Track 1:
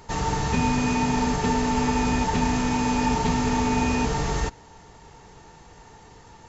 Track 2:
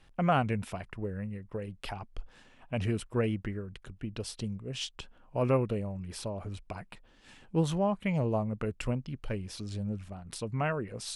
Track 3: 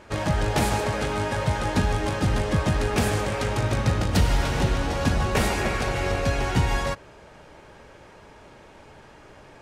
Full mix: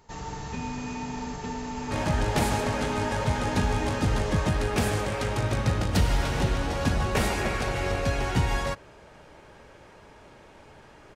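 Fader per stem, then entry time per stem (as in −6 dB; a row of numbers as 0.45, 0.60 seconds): −11.0 dB, muted, −2.5 dB; 0.00 s, muted, 1.80 s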